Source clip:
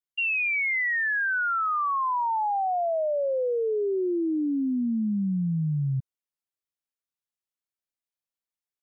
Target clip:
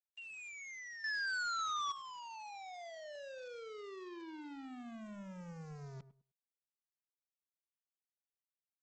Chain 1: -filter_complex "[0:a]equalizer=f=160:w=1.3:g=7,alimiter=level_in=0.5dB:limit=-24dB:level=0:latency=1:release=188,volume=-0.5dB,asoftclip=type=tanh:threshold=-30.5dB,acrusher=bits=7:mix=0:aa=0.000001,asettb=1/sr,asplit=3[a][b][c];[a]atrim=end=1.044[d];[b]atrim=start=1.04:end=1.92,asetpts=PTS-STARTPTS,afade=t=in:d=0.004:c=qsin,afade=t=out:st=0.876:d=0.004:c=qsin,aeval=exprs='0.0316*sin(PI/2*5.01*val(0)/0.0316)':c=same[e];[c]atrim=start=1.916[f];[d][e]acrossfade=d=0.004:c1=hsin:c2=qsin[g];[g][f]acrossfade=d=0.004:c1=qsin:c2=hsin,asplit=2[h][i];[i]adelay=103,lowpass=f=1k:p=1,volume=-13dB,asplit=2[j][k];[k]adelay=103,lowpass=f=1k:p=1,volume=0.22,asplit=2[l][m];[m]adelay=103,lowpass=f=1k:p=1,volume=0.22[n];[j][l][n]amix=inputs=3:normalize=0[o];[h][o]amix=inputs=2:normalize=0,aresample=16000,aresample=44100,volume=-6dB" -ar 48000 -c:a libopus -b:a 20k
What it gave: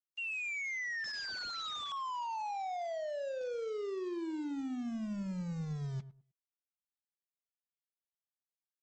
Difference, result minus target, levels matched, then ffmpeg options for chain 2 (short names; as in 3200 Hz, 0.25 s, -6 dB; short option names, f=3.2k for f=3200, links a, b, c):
soft clip: distortion -6 dB
-filter_complex "[0:a]equalizer=f=160:w=1.3:g=7,alimiter=level_in=0.5dB:limit=-24dB:level=0:latency=1:release=188,volume=-0.5dB,asoftclip=type=tanh:threshold=-40.5dB,acrusher=bits=7:mix=0:aa=0.000001,asettb=1/sr,asplit=3[a][b][c];[a]atrim=end=1.044[d];[b]atrim=start=1.04:end=1.92,asetpts=PTS-STARTPTS,afade=t=in:d=0.004:c=qsin,afade=t=out:st=0.876:d=0.004:c=qsin,aeval=exprs='0.0316*sin(PI/2*5.01*val(0)/0.0316)':c=same[e];[c]atrim=start=1.916[f];[d][e]acrossfade=d=0.004:c1=hsin:c2=qsin[g];[g][f]acrossfade=d=0.004:c1=qsin:c2=hsin,asplit=2[h][i];[i]adelay=103,lowpass=f=1k:p=1,volume=-13dB,asplit=2[j][k];[k]adelay=103,lowpass=f=1k:p=1,volume=0.22,asplit=2[l][m];[m]adelay=103,lowpass=f=1k:p=1,volume=0.22[n];[j][l][n]amix=inputs=3:normalize=0[o];[h][o]amix=inputs=2:normalize=0,aresample=16000,aresample=44100,volume=-6dB" -ar 48000 -c:a libopus -b:a 20k